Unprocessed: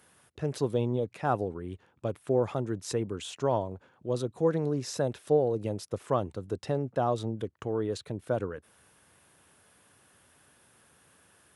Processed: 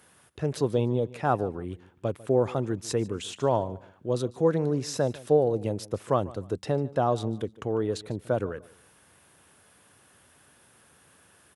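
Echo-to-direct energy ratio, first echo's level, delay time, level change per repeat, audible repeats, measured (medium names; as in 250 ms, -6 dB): -19.5 dB, -20.0 dB, 148 ms, -11.0 dB, 2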